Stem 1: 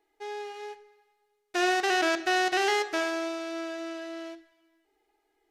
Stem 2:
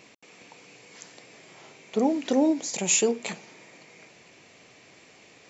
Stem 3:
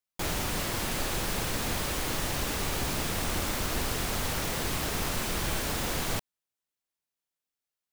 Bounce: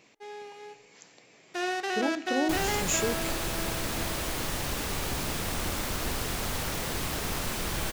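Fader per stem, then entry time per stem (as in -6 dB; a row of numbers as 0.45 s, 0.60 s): -5.5 dB, -7.0 dB, -1.0 dB; 0.00 s, 0.00 s, 2.30 s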